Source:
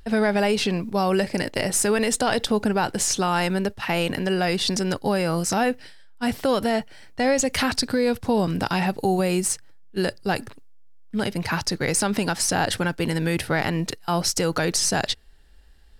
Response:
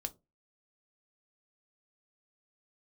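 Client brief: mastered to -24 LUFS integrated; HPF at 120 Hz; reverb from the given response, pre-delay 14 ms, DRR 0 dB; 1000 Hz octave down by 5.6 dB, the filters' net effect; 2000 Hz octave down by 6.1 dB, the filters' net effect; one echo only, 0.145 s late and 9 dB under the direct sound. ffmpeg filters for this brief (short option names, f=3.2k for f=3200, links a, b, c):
-filter_complex "[0:a]highpass=120,equalizer=f=1k:t=o:g=-7,equalizer=f=2k:t=o:g=-5.5,aecho=1:1:145:0.355,asplit=2[a][b];[1:a]atrim=start_sample=2205,adelay=14[c];[b][c]afir=irnorm=-1:irlink=0,volume=1dB[d];[a][d]amix=inputs=2:normalize=0,volume=-2dB"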